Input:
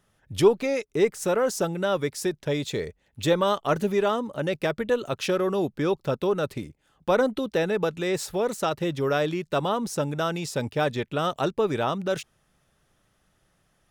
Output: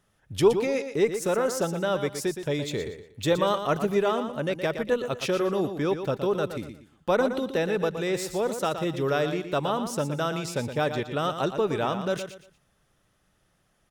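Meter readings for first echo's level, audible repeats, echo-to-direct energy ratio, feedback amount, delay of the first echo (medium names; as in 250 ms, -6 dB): -9.0 dB, 3, -8.5 dB, 29%, 118 ms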